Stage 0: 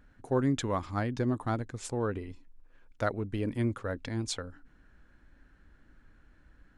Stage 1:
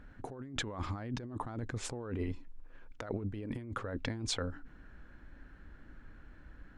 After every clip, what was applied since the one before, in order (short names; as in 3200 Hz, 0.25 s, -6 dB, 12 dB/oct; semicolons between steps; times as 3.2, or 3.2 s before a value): high shelf 5600 Hz -12 dB; negative-ratio compressor -39 dBFS, ratio -1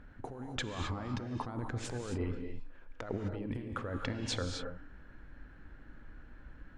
high shelf 7400 Hz -8 dB; non-linear reverb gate 0.29 s rising, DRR 4.5 dB